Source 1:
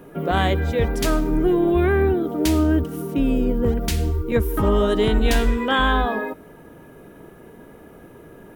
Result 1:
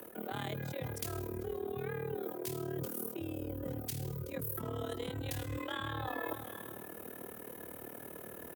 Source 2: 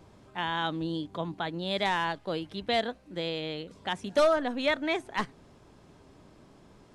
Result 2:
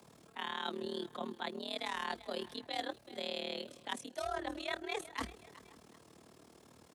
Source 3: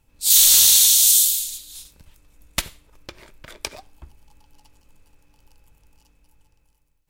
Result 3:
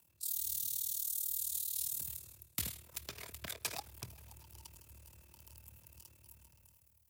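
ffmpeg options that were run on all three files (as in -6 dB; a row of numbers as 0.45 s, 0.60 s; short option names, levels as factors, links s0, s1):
-filter_complex "[0:a]aemphasis=mode=production:type=50fm,asplit=2[s0][s1];[s1]aecho=0:1:381|762:0.0631|0.0227[s2];[s0][s2]amix=inputs=2:normalize=0,tremolo=f=38:d=0.857,acrossover=split=260[s3][s4];[s4]acompressor=threshold=0.0891:ratio=6[s5];[s3][s5]amix=inputs=2:normalize=0,afreqshift=57,areverse,acompressor=threshold=0.02:ratio=12,areverse,lowshelf=f=280:g=-4,asplit=2[s6][s7];[s7]adelay=530.6,volume=0.0708,highshelf=f=4000:g=-11.9[s8];[s6][s8]amix=inputs=2:normalize=0"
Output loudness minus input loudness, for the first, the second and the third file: -19.5 LU, -10.0 LU, -25.0 LU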